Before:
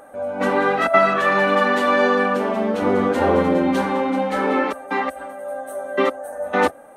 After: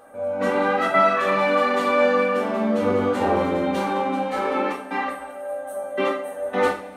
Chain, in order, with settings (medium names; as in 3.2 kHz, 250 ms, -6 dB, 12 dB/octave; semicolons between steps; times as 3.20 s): two-slope reverb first 0.43 s, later 2.3 s, from -20 dB, DRR -2 dB; trim -6.5 dB